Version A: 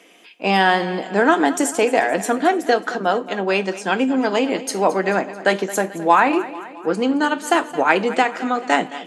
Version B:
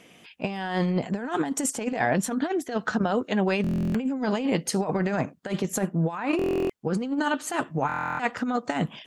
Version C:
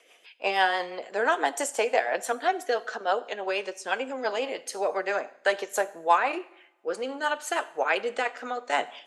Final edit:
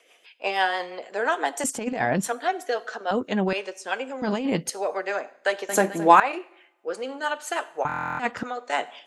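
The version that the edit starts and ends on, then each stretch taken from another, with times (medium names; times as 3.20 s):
C
1.64–2.28 s: from B
3.11–3.53 s: from B
4.22–4.70 s: from B
5.69–6.20 s: from A
7.85–8.43 s: from B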